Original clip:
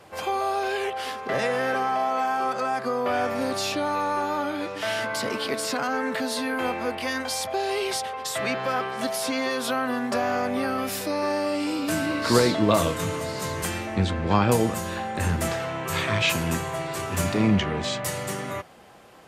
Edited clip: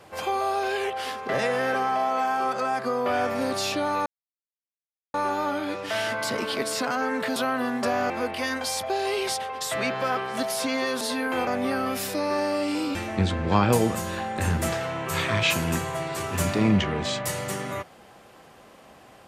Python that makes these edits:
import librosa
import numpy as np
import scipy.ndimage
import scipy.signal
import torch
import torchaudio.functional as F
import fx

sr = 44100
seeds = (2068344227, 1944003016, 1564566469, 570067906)

y = fx.edit(x, sr, fx.insert_silence(at_s=4.06, length_s=1.08),
    fx.swap(start_s=6.28, length_s=0.46, other_s=9.65, other_length_s=0.74),
    fx.cut(start_s=11.87, length_s=1.87), tone=tone)